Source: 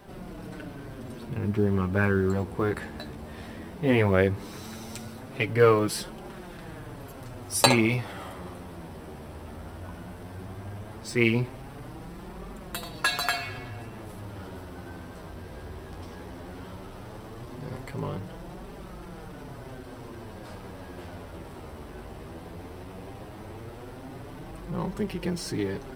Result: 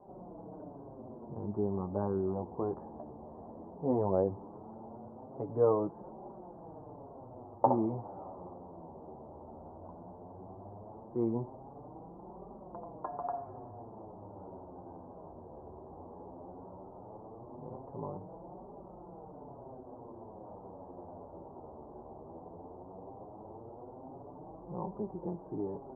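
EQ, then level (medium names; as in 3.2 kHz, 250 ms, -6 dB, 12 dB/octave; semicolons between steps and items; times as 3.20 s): steep low-pass 930 Hz 48 dB/octave; tilt EQ +4 dB/octave; dynamic bell 470 Hz, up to -3 dB, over -45 dBFS, Q 3.1; 0.0 dB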